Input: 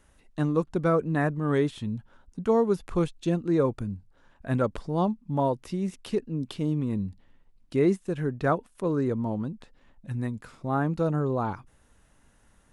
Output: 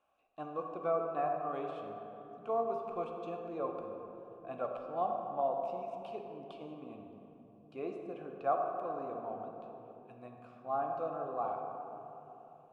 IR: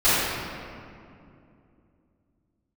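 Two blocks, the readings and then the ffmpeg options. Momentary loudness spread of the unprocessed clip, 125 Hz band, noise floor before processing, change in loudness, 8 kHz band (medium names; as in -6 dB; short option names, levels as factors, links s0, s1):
12 LU, -26.0 dB, -62 dBFS, -10.5 dB, no reading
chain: -filter_complex "[0:a]asubboost=boost=2.5:cutoff=69,asplit=3[s0][s1][s2];[s0]bandpass=f=730:t=q:w=8,volume=1[s3];[s1]bandpass=f=1090:t=q:w=8,volume=0.501[s4];[s2]bandpass=f=2440:t=q:w=8,volume=0.355[s5];[s3][s4][s5]amix=inputs=3:normalize=0,asplit=2[s6][s7];[1:a]atrim=start_sample=2205,asetrate=29106,aresample=44100[s8];[s7][s8]afir=irnorm=-1:irlink=0,volume=0.0596[s9];[s6][s9]amix=inputs=2:normalize=0"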